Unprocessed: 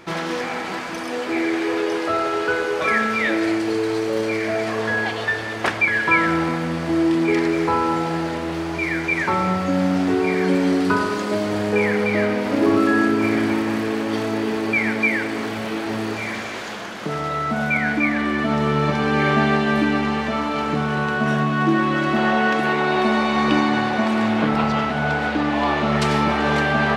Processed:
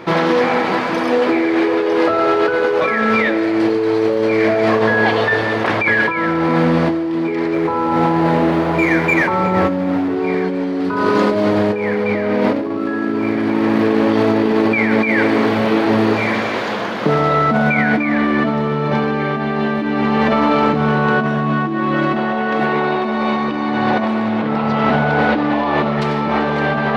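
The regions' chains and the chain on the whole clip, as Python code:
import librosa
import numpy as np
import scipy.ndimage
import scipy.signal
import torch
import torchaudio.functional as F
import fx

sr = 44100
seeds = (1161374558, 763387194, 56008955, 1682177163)

y = fx.chain(x, sr, fx.median_filter(points=9),
    fx.echo_alternate(ms=186, hz=820.0, feedback_pct=57, wet_db=-8), at=(7.54, 10.16))
y = fx.graphic_eq(y, sr, hz=(125, 250, 500, 1000, 2000, 4000, 8000), db=(9, 8, 10, 8, 5, 6, -6))
y = fx.over_compress(y, sr, threshold_db=-13.0, ratio=-1.0)
y = F.gain(torch.from_numpy(y), -3.0).numpy()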